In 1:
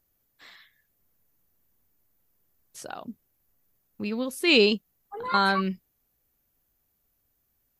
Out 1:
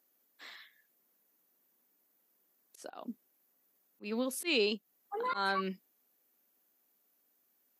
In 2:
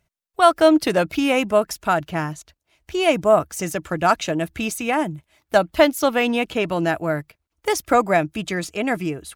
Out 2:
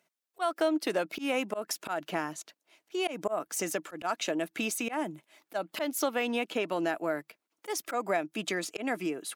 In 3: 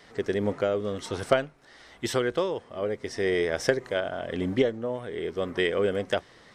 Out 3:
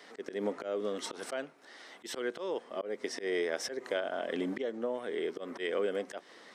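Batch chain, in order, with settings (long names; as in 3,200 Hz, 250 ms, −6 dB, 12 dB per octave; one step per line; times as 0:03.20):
high-pass filter 230 Hz 24 dB per octave
volume swells 186 ms
downward compressor 2.5 to 1, threshold −31 dBFS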